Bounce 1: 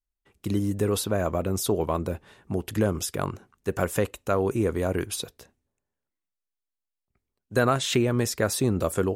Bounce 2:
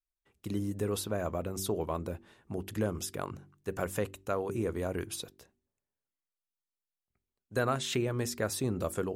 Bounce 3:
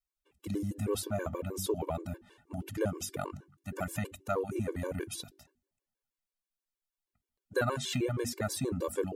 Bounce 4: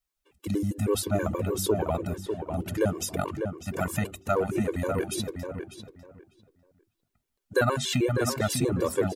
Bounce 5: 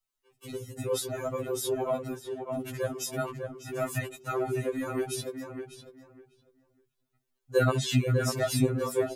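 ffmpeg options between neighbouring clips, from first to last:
ffmpeg -i in.wav -af "bandreject=frequency=47.98:width_type=h:width=4,bandreject=frequency=95.96:width_type=h:width=4,bandreject=frequency=143.94:width_type=h:width=4,bandreject=frequency=191.92:width_type=h:width=4,bandreject=frequency=239.9:width_type=h:width=4,bandreject=frequency=287.88:width_type=h:width=4,bandreject=frequency=335.86:width_type=h:width=4,bandreject=frequency=383.84:width_type=h:width=4,volume=-7.5dB" out.wav
ffmpeg -i in.wav -af "afftfilt=real='re*gt(sin(2*PI*6.3*pts/sr)*(1-2*mod(floor(b*sr/1024/300),2)),0)':imag='im*gt(sin(2*PI*6.3*pts/sr)*(1-2*mod(floor(b*sr/1024/300),2)),0)':win_size=1024:overlap=0.75,volume=2.5dB" out.wav
ffmpeg -i in.wav -filter_complex "[0:a]asplit=2[link_01][link_02];[link_02]adelay=599,lowpass=frequency=2300:poles=1,volume=-6dB,asplit=2[link_03][link_04];[link_04]adelay=599,lowpass=frequency=2300:poles=1,volume=0.19,asplit=2[link_05][link_06];[link_06]adelay=599,lowpass=frequency=2300:poles=1,volume=0.19[link_07];[link_01][link_03][link_05][link_07]amix=inputs=4:normalize=0,volume=6.5dB" out.wav
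ffmpeg -i in.wav -af "afftfilt=real='re*2.45*eq(mod(b,6),0)':imag='im*2.45*eq(mod(b,6),0)':win_size=2048:overlap=0.75" out.wav

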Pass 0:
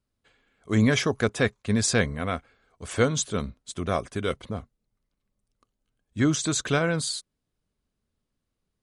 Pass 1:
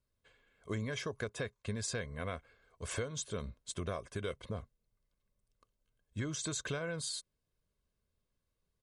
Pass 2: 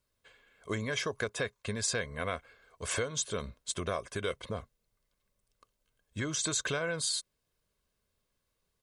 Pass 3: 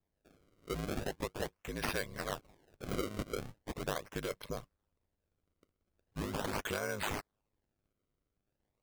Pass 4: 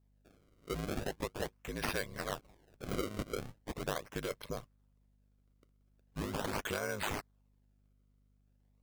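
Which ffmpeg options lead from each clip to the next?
ffmpeg -i in.wav -af "aecho=1:1:1.9:0.42,acompressor=threshold=-30dB:ratio=12,volume=-4.5dB" out.wav
ffmpeg -i in.wav -af "lowshelf=frequency=330:gain=-8,volume=7.5dB" out.wav
ffmpeg -i in.wav -af "aeval=exprs='val(0)*sin(2*PI*51*n/s)':channel_layout=same,acrusher=samples=29:mix=1:aa=0.000001:lfo=1:lforange=46.4:lforate=0.4,volume=-1dB" out.wav
ffmpeg -i in.wav -af "aeval=exprs='val(0)+0.000355*(sin(2*PI*50*n/s)+sin(2*PI*2*50*n/s)/2+sin(2*PI*3*50*n/s)/3+sin(2*PI*4*50*n/s)/4+sin(2*PI*5*50*n/s)/5)':channel_layout=same" out.wav

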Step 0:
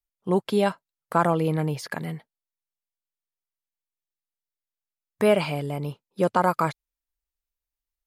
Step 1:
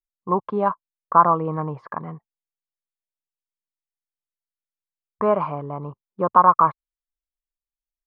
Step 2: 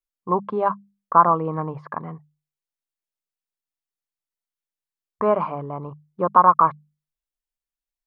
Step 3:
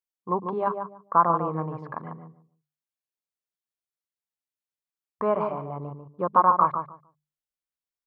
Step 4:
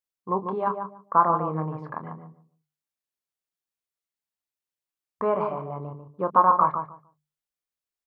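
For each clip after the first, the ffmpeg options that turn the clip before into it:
ffmpeg -i in.wav -af "anlmdn=0.158,lowpass=frequency=1100:width_type=q:width=9.4,volume=-3dB" out.wav
ffmpeg -i in.wav -af "bandreject=frequency=50:width_type=h:width=6,bandreject=frequency=100:width_type=h:width=6,bandreject=frequency=150:width_type=h:width=6,bandreject=frequency=200:width_type=h:width=6" out.wav
ffmpeg -i in.wav -filter_complex "[0:a]highpass=57,asplit=2[link_01][link_02];[link_02]adelay=146,lowpass=frequency=1000:poles=1,volume=-5dB,asplit=2[link_03][link_04];[link_04]adelay=146,lowpass=frequency=1000:poles=1,volume=0.21,asplit=2[link_05][link_06];[link_06]adelay=146,lowpass=frequency=1000:poles=1,volume=0.21[link_07];[link_03][link_05][link_07]amix=inputs=3:normalize=0[link_08];[link_01][link_08]amix=inputs=2:normalize=0,volume=-5dB" out.wav
ffmpeg -i in.wav -filter_complex "[0:a]asplit=2[link_01][link_02];[link_02]adelay=26,volume=-10dB[link_03];[link_01][link_03]amix=inputs=2:normalize=0" out.wav

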